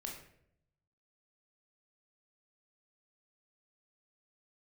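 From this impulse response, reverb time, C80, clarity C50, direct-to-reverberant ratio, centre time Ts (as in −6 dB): 0.70 s, 8.5 dB, 5.0 dB, −0.5 dB, 35 ms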